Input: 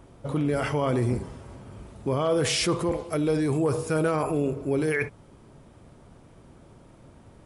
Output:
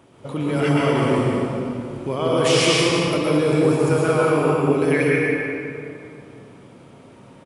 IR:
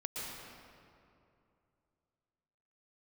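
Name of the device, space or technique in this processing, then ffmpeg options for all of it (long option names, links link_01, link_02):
stadium PA: -filter_complex "[0:a]highpass=140,equalizer=frequency=2800:width_type=o:width=0.94:gain=5,aecho=1:1:183.7|236.2:0.316|0.282[link_01];[1:a]atrim=start_sample=2205[link_02];[link_01][link_02]afir=irnorm=-1:irlink=0,volume=4.5dB"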